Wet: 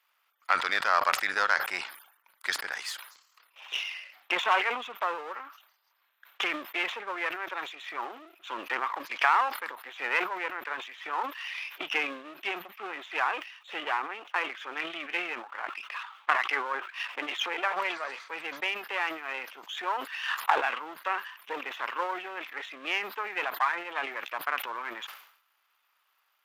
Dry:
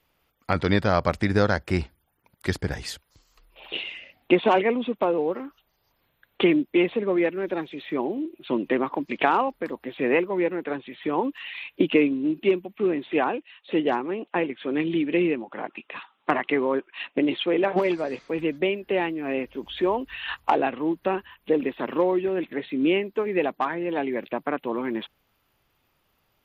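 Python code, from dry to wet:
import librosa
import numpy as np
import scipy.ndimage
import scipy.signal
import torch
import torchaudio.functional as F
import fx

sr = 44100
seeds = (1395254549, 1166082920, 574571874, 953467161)

y = np.where(x < 0.0, 10.0 ** (-7.0 / 20.0) * x, x)
y = fx.highpass_res(y, sr, hz=1200.0, q=1.7)
y = fx.sustainer(y, sr, db_per_s=90.0)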